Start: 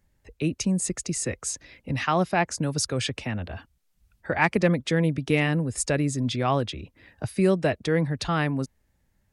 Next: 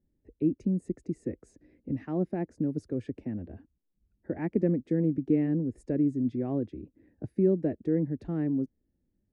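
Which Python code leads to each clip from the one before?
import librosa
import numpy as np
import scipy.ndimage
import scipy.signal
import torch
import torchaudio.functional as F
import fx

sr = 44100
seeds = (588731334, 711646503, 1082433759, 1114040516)

y = fx.curve_eq(x, sr, hz=(130.0, 310.0, 1200.0, 1800.0, 3200.0), db=(0, 12, -19, -12, -26))
y = y * 10.0 ** (-9.0 / 20.0)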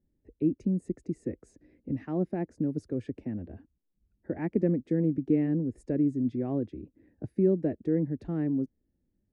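y = x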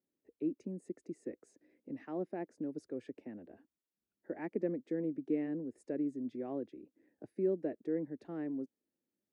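y = scipy.signal.sosfilt(scipy.signal.butter(2, 350.0, 'highpass', fs=sr, output='sos'), x)
y = y * 10.0 ** (-4.5 / 20.0)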